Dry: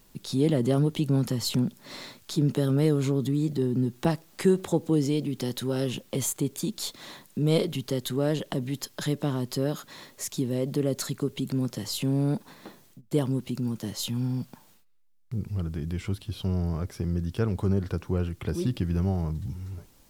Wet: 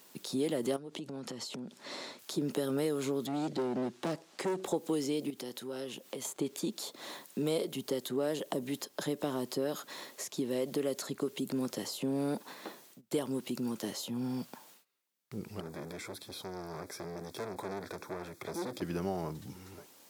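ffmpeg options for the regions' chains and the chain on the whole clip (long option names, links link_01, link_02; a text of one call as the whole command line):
ffmpeg -i in.wav -filter_complex "[0:a]asettb=1/sr,asplit=3[link_01][link_02][link_03];[link_01]atrim=end=0.764[link_04];[link_02]atrim=start=0.76:end=2.19,asetpts=PTS-STARTPTS,afade=type=in:duration=0.004:curve=qsin,afade=type=out:start_time=1.426:duration=0.004:curve=qsin,lowpass=7200,acompressor=threshold=-33dB:ratio=16:attack=3.2:release=140:knee=1:detection=peak[link_05];[link_03]atrim=start=2.186[link_06];[link_04][link_05]acrossfade=duration=0.004:curve1=hsin:curve2=qsin[link_07];[link_07][link_06]acrossfade=duration=0.004:curve1=qsin:curve2=hsin,asettb=1/sr,asplit=3[link_08][link_09][link_10];[link_08]atrim=end=3.264[link_11];[link_09]atrim=start=3.26:end=4.66,asetpts=PTS-STARTPTS,afade=type=in:duration=0.004:curve=qsin,afade=type=out:start_time=1.396:duration=0.004:curve=qsin,lowpass=6500,volume=26dB,asoftclip=hard,volume=-26dB[link_12];[link_10]atrim=start=4.656[link_13];[link_11][link_12]acrossfade=duration=0.004:curve1=hsin:curve2=qsin[link_14];[link_14][link_13]acrossfade=duration=0.004:curve1=qsin:curve2=hsin,asettb=1/sr,asplit=3[link_15][link_16][link_17];[link_15]atrim=end=5.304[link_18];[link_16]atrim=start=5.3:end=6.25,asetpts=PTS-STARTPTS,afade=type=in:duration=0.004:curve=qsin,afade=type=out:start_time=0.946:duration=0.004:curve=qsin,acompressor=threshold=-44dB:ratio=2:attack=3.2:release=140:knee=1:detection=peak,highpass=53[link_19];[link_17]atrim=start=6.246[link_20];[link_18][link_19]acrossfade=duration=0.004:curve1=hsin:curve2=qsin[link_21];[link_21][link_20]acrossfade=duration=0.004:curve1=qsin:curve2=hsin,asettb=1/sr,asplit=3[link_22][link_23][link_24];[link_22]atrim=end=15.604[link_25];[link_23]atrim=start=15.6:end=18.82,asetpts=PTS-STARTPTS,afade=type=in:duration=0.004:curve=qsin,afade=type=out:start_time=3.216:duration=0.004:curve=qsin,volume=33.5dB,asoftclip=hard,volume=-33.5dB,asuperstop=centerf=2900:order=4:qfactor=3.5[link_26];[link_24]atrim=start=18.816[link_27];[link_25][link_26]acrossfade=duration=0.004:curve1=hsin:curve2=qsin[link_28];[link_28][link_27]acrossfade=duration=0.004:curve1=qsin:curve2=hsin,highpass=340,acrossover=split=940|6500[link_29][link_30][link_31];[link_29]acompressor=threshold=-33dB:ratio=4[link_32];[link_30]acompressor=threshold=-48dB:ratio=4[link_33];[link_31]acompressor=threshold=-50dB:ratio=4[link_34];[link_32][link_33][link_34]amix=inputs=3:normalize=0,volume=3dB" out.wav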